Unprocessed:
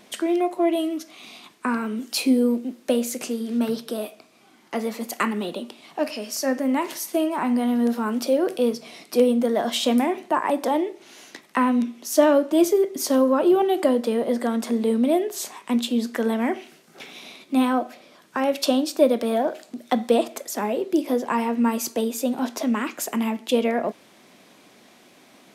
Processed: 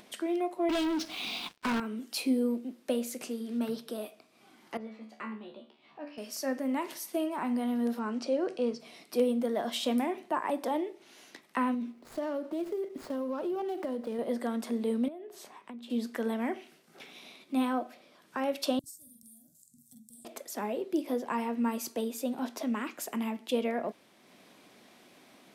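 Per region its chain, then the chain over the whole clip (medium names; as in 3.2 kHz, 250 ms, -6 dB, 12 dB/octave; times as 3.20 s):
0.69–1.80 s: cabinet simulation 180–5400 Hz, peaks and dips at 250 Hz -4 dB, 370 Hz -7 dB, 580 Hz -10 dB, 1.2 kHz -7 dB, 1.9 kHz -8 dB + waveshaping leveller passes 5
4.77–6.18 s: low-pass 3.3 kHz + feedback comb 73 Hz, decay 0.39 s, mix 90%
7.99–8.80 s: block-companded coder 7-bit + low-pass 7.2 kHz 24 dB/octave + band-stop 3.5 kHz, Q 8.5
11.74–14.19 s: median filter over 15 samples + compression 4:1, threshold -22 dBFS
15.08–15.90 s: treble shelf 3.3 kHz -12 dB + band-stop 7.2 kHz, Q 22 + compression 8:1, threshold -32 dBFS
18.79–20.25 s: elliptic band-stop 120–7600 Hz, stop band 50 dB + doubling 46 ms -4 dB
whole clip: peaking EQ 6.7 kHz -3 dB 0.41 oct; upward compressor, threshold -42 dBFS; trim -9 dB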